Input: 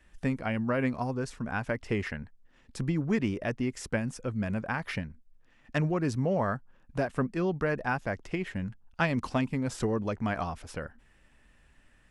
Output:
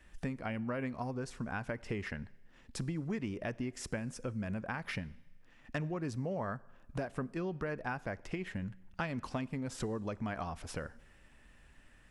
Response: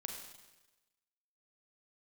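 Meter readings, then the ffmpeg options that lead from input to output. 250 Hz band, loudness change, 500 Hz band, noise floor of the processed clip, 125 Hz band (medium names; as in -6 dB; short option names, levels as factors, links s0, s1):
-8.0 dB, -8.0 dB, -8.0 dB, -61 dBFS, -7.5 dB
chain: -filter_complex "[0:a]acompressor=threshold=0.0126:ratio=3,asplit=2[s0][s1];[1:a]atrim=start_sample=2205[s2];[s1][s2]afir=irnorm=-1:irlink=0,volume=0.188[s3];[s0][s3]amix=inputs=2:normalize=0"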